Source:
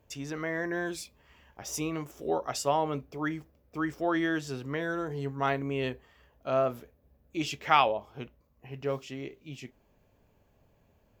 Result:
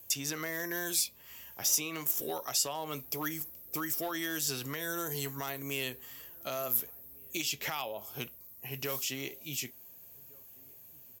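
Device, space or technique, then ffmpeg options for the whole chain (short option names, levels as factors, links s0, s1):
FM broadcast chain: -filter_complex "[0:a]highpass=f=75:w=0.5412,highpass=f=75:w=1.3066,dynaudnorm=f=360:g=13:m=1.41,acrossover=split=890|5000[s0][s1][s2];[s0]acompressor=threshold=0.0158:ratio=4[s3];[s1]acompressor=threshold=0.01:ratio=4[s4];[s2]acompressor=threshold=0.00112:ratio=4[s5];[s3][s4][s5]amix=inputs=3:normalize=0,aemphasis=mode=production:type=75fm,alimiter=level_in=1.19:limit=0.0631:level=0:latency=1:release=240,volume=0.841,asoftclip=type=hard:threshold=0.0398,lowpass=f=15000:w=0.5412,lowpass=f=15000:w=1.3066,aemphasis=mode=production:type=75fm,asettb=1/sr,asplit=3[s6][s7][s8];[s6]atrim=end=1.664[s9];[s7]atrim=start=1.66:end=2.21,asetpts=PTS-STARTPTS,afade=t=in:d=0.004:c=qsin,afade=t=out:st=0.546:d=0.004:c=qsin,highpass=140[s10];[s8]atrim=start=2.206[s11];[s9][s10]acrossfade=d=0.004:c1=hsin:c2=qsin[s12];[s12][s11]acrossfade=d=0.004:c1=qsin:c2=hsin,asplit=2[s13][s14];[s14]adelay=1458,volume=0.0501,highshelf=f=4000:g=-32.8[s15];[s13][s15]amix=inputs=2:normalize=0"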